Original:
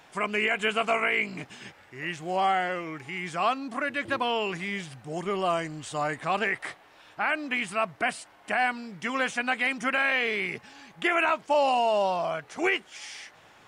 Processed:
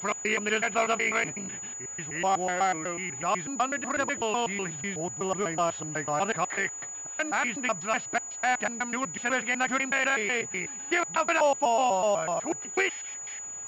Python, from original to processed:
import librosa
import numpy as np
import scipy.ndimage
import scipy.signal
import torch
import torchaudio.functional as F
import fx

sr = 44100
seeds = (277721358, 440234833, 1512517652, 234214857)

y = fx.block_reorder(x, sr, ms=124.0, group=2)
y = fx.pwm(y, sr, carrier_hz=6900.0)